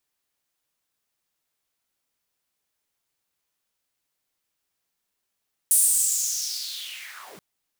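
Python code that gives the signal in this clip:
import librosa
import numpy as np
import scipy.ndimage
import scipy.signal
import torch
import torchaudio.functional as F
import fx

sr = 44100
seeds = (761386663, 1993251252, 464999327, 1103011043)

y = fx.riser_noise(sr, seeds[0], length_s=1.68, colour='pink', kind='highpass', start_hz=9700.0, end_hz=130.0, q=5.1, swell_db=-31.0, law='linear')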